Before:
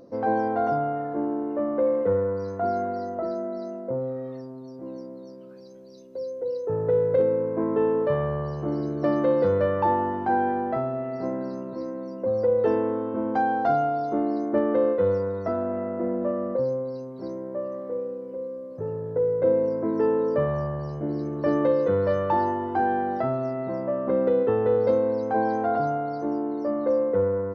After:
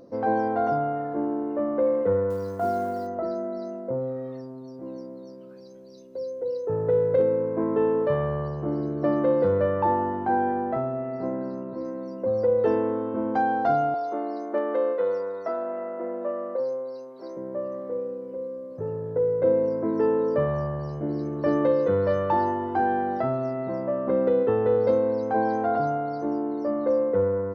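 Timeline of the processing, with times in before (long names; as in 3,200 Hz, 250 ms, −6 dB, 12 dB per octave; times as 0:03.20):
0:02.30–0:03.07: floating-point word with a short mantissa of 4 bits
0:08.48–0:11.85: low-pass filter 2,200 Hz 6 dB per octave
0:13.94–0:17.37: high-pass filter 460 Hz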